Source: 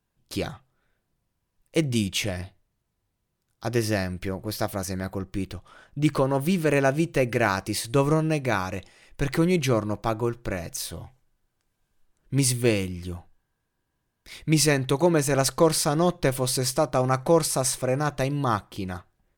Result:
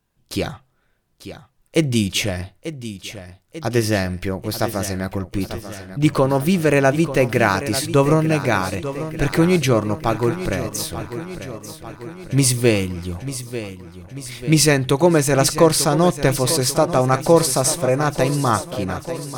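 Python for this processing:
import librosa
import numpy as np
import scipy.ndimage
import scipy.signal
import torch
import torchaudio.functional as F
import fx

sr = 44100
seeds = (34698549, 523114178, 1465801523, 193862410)

y = fx.echo_feedback(x, sr, ms=892, feedback_pct=58, wet_db=-12)
y = y * librosa.db_to_amplitude(6.0)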